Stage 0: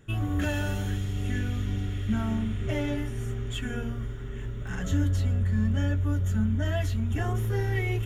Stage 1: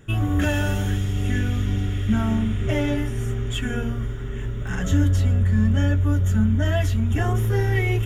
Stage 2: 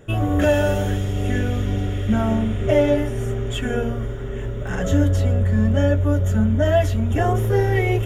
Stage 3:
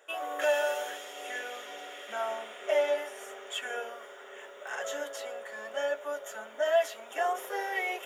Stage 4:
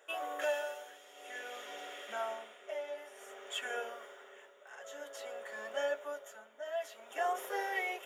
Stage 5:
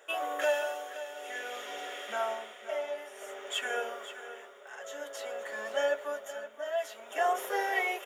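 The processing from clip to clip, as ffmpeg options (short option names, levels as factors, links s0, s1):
-af "bandreject=f=4200:w=11,volume=2.11"
-af "equalizer=f=560:w=1.4:g=12.5"
-af "highpass=f=600:w=0.5412,highpass=f=600:w=1.3066,volume=0.562"
-af "tremolo=f=0.53:d=0.75,volume=0.75"
-af "aecho=1:1:523:0.224,volume=1.88"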